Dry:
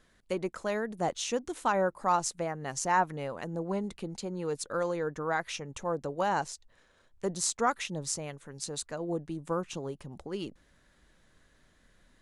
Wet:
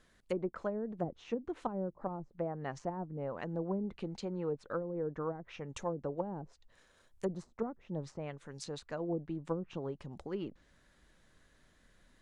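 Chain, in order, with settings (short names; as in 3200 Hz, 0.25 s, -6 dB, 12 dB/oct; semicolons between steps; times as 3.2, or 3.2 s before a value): treble ducked by the level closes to 320 Hz, closed at -26.5 dBFS; 5.7–8.05 high shelf 8400 Hz +11 dB; gain -2 dB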